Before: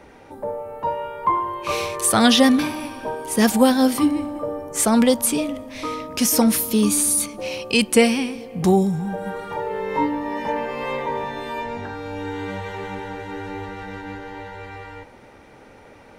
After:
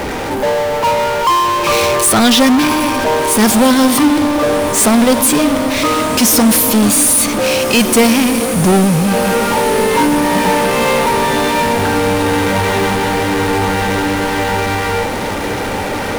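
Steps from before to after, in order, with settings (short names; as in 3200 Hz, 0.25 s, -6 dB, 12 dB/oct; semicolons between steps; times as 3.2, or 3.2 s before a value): power-law curve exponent 0.35; diffused feedback echo 1.546 s, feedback 67%, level -11.5 dB; gain -1 dB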